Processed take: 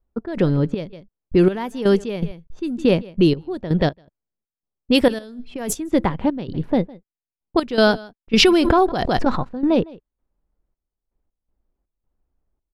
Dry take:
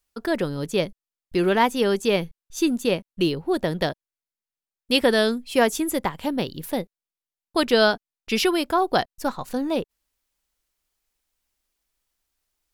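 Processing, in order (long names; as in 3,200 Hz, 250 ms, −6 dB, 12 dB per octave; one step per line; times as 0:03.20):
low-pass that shuts in the quiet parts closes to 800 Hz, open at −15 dBFS
low-shelf EQ 390 Hz +10.5 dB
in parallel at −0.5 dB: brickwall limiter −13 dBFS, peak gain reduction 11.5 dB
0:05.08–0:05.73: on the sum: compressor whose output falls as the input rises −22 dBFS, ratio −1
on a send: single-tap delay 157 ms −22.5 dB
on the sum: gate pattern "x.xx.xxx.." 81 BPM −12 dB
0:08.33–0:09.52: background raised ahead of every attack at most 24 dB per second
level −2.5 dB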